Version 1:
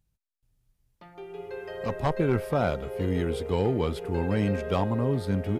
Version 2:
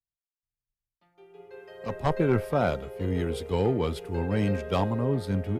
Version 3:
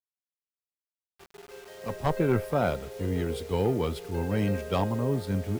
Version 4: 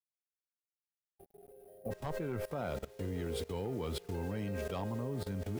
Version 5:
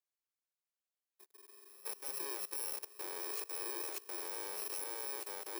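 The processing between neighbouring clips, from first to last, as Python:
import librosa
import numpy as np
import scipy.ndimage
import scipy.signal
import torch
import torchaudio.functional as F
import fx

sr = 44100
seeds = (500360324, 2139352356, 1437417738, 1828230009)

y1 = fx.band_widen(x, sr, depth_pct=70)
y2 = fx.quant_dither(y1, sr, seeds[0], bits=8, dither='none')
y2 = F.gain(torch.from_numpy(y2), -1.0).numpy()
y3 = fx.spec_box(y2, sr, start_s=1.1, length_s=0.81, low_hz=820.0, high_hz=8900.0, gain_db=-23)
y3 = fx.level_steps(y3, sr, step_db=19)
y3 = F.gain(torch.from_numpy(y3), 1.0).numpy()
y4 = fx.bit_reversed(y3, sr, seeds[1], block=64)
y4 = scipy.signal.sosfilt(scipy.signal.ellip(4, 1.0, 40, 350.0, 'highpass', fs=sr, output='sos'), y4)
y4 = F.gain(torch.from_numpy(y4), -1.0).numpy()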